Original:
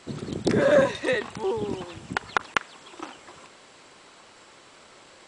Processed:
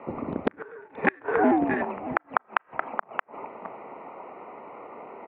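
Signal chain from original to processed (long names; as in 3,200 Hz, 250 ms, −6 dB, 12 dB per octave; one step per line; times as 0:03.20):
adaptive Wiener filter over 25 samples
parametric band 480 Hz −6.5 dB 1.2 octaves
downward compressor 2 to 1, threshold −34 dBFS, peak gain reduction 9.5 dB
on a send: single-tap delay 625 ms −13.5 dB
on the sum: four-comb reverb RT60 0.33 s, combs from 26 ms, DRR 18 dB
single-sideband voice off tune −130 Hz 470–2,300 Hz
gate with flip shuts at −28 dBFS, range −32 dB
boost into a limiter +21 dB
level −1 dB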